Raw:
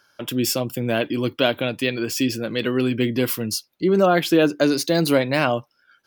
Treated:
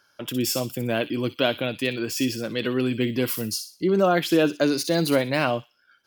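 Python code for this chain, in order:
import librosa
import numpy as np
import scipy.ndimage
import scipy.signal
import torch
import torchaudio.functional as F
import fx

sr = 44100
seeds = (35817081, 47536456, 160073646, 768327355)

y = fx.echo_wet_highpass(x, sr, ms=61, feedback_pct=33, hz=3300.0, wet_db=-7.0)
y = y * librosa.db_to_amplitude(-3.0)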